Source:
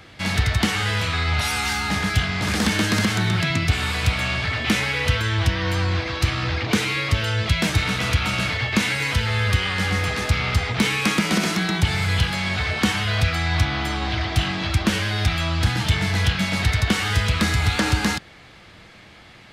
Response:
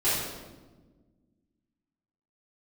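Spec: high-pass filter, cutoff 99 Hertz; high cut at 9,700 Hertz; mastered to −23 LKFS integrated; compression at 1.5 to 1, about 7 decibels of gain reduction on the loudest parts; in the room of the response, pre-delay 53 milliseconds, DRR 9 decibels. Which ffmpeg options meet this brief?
-filter_complex "[0:a]highpass=99,lowpass=9700,acompressor=threshold=-36dB:ratio=1.5,asplit=2[link_01][link_02];[1:a]atrim=start_sample=2205,adelay=53[link_03];[link_02][link_03]afir=irnorm=-1:irlink=0,volume=-21.5dB[link_04];[link_01][link_04]amix=inputs=2:normalize=0,volume=4.5dB"

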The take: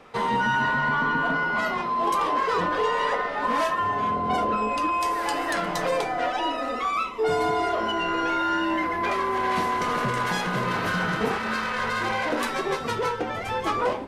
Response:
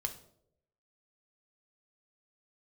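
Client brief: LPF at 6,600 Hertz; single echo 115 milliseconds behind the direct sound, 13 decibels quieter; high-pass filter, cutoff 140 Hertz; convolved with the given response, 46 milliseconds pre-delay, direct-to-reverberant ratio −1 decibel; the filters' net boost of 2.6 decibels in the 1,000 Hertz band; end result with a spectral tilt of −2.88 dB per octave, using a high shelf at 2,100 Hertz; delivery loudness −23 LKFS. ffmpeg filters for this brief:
-filter_complex "[0:a]highpass=140,lowpass=6600,equalizer=frequency=1000:width_type=o:gain=4,highshelf=frequency=2100:gain=-5,aecho=1:1:115:0.224,asplit=2[link_01][link_02];[1:a]atrim=start_sample=2205,adelay=46[link_03];[link_02][link_03]afir=irnorm=-1:irlink=0,volume=0.5dB[link_04];[link_01][link_04]amix=inputs=2:normalize=0,volume=-3dB"

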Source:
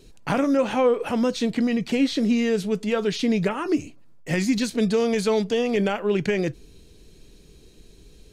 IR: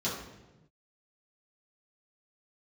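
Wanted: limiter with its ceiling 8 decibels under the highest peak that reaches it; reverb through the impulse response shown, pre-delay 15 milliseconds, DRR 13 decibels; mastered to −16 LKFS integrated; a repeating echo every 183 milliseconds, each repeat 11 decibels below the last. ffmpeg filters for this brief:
-filter_complex "[0:a]alimiter=limit=-19.5dB:level=0:latency=1,aecho=1:1:183|366|549:0.282|0.0789|0.0221,asplit=2[link_01][link_02];[1:a]atrim=start_sample=2205,adelay=15[link_03];[link_02][link_03]afir=irnorm=-1:irlink=0,volume=-20dB[link_04];[link_01][link_04]amix=inputs=2:normalize=0,volume=10.5dB"

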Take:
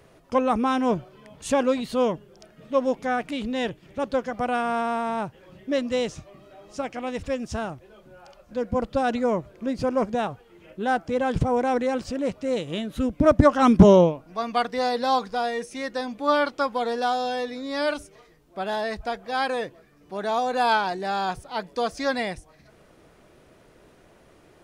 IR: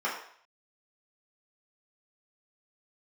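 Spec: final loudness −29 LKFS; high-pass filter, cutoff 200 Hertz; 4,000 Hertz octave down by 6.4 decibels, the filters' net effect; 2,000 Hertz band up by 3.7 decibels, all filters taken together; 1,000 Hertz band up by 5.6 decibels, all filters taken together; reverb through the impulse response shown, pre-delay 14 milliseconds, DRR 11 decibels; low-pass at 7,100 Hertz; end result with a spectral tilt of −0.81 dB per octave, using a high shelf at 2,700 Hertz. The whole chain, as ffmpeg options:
-filter_complex "[0:a]highpass=200,lowpass=7100,equalizer=frequency=1000:width_type=o:gain=7.5,equalizer=frequency=2000:width_type=o:gain=4.5,highshelf=frequency=2700:gain=-4.5,equalizer=frequency=4000:width_type=o:gain=-6.5,asplit=2[link_01][link_02];[1:a]atrim=start_sample=2205,adelay=14[link_03];[link_02][link_03]afir=irnorm=-1:irlink=0,volume=-21dB[link_04];[link_01][link_04]amix=inputs=2:normalize=0,volume=-7dB"

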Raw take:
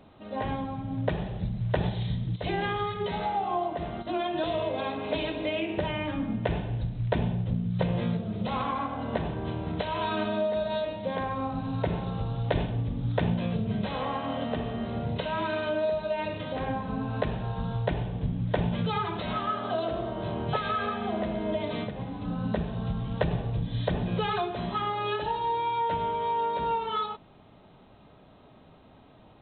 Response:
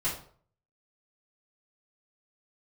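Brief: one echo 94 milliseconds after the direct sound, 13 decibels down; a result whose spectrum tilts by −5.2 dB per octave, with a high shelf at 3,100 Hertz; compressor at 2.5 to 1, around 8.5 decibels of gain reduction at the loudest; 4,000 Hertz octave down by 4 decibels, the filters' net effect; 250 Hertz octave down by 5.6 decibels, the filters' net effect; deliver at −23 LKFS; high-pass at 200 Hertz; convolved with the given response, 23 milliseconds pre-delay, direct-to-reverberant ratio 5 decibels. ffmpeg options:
-filter_complex "[0:a]highpass=200,equalizer=frequency=250:width_type=o:gain=-4.5,highshelf=frequency=3100:gain=5,equalizer=frequency=4000:width_type=o:gain=-9,acompressor=threshold=-37dB:ratio=2.5,aecho=1:1:94:0.224,asplit=2[link_01][link_02];[1:a]atrim=start_sample=2205,adelay=23[link_03];[link_02][link_03]afir=irnorm=-1:irlink=0,volume=-12dB[link_04];[link_01][link_04]amix=inputs=2:normalize=0,volume=14dB"

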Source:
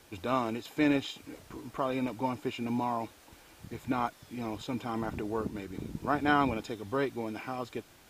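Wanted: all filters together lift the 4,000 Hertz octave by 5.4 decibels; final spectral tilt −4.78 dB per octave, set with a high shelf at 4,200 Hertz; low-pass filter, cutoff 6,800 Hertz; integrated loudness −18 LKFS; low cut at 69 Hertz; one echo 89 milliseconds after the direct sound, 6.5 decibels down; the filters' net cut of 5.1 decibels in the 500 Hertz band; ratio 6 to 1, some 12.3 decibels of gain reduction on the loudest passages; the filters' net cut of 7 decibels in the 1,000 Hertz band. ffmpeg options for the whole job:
ffmpeg -i in.wav -af "highpass=69,lowpass=6800,equalizer=frequency=500:width_type=o:gain=-4.5,equalizer=frequency=1000:width_type=o:gain=-8.5,equalizer=frequency=4000:width_type=o:gain=4,highshelf=frequency=4200:gain=7.5,acompressor=threshold=-37dB:ratio=6,aecho=1:1:89:0.473,volume=23.5dB" out.wav

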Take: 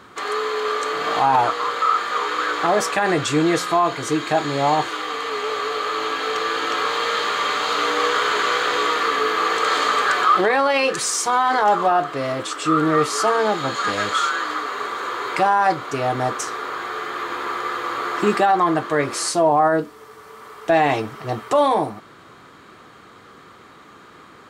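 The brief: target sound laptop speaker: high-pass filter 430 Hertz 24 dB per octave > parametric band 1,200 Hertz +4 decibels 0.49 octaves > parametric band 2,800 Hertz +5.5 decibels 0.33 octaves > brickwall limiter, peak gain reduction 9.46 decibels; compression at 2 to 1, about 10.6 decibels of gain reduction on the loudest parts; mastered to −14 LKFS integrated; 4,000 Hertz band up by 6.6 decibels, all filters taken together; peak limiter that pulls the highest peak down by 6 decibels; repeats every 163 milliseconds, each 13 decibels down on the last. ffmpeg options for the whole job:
ffmpeg -i in.wav -af "equalizer=frequency=4000:width_type=o:gain=6,acompressor=threshold=-32dB:ratio=2,alimiter=limit=-20dB:level=0:latency=1,highpass=frequency=430:width=0.5412,highpass=frequency=430:width=1.3066,equalizer=frequency=1200:width_type=o:width=0.49:gain=4,equalizer=frequency=2800:width_type=o:width=0.33:gain=5.5,aecho=1:1:163|326|489:0.224|0.0493|0.0108,volume=19dB,alimiter=limit=-6dB:level=0:latency=1" out.wav

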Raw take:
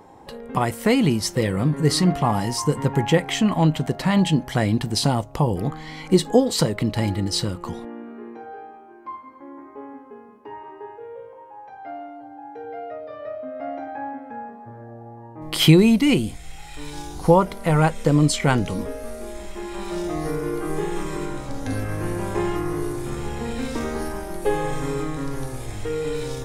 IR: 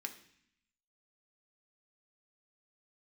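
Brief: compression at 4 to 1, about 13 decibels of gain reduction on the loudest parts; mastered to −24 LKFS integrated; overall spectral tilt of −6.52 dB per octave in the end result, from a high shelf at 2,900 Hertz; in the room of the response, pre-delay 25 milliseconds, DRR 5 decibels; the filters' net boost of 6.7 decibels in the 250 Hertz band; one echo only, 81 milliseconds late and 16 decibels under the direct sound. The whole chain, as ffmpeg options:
-filter_complex "[0:a]equalizer=frequency=250:width_type=o:gain=9,highshelf=frequency=2900:gain=-9,acompressor=threshold=-21dB:ratio=4,aecho=1:1:81:0.158,asplit=2[link_01][link_02];[1:a]atrim=start_sample=2205,adelay=25[link_03];[link_02][link_03]afir=irnorm=-1:irlink=0,volume=-3.5dB[link_04];[link_01][link_04]amix=inputs=2:normalize=0,volume=2dB"

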